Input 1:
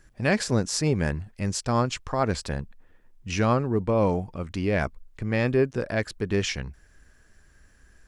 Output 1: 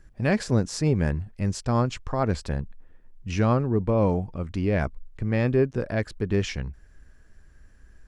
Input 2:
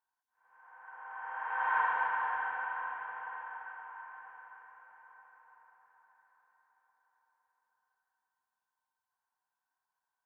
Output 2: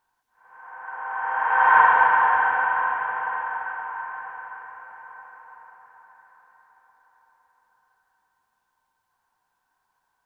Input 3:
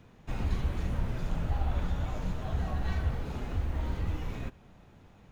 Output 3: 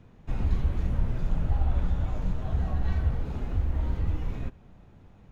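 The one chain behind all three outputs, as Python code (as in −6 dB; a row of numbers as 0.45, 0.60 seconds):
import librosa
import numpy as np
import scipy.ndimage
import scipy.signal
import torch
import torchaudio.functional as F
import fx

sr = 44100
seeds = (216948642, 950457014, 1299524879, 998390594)

y = fx.tilt_eq(x, sr, slope=-1.5)
y = y * 10.0 ** (-26 / 20.0) / np.sqrt(np.mean(np.square(y)))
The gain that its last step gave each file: −2.0, +15.0, −1.5 decibels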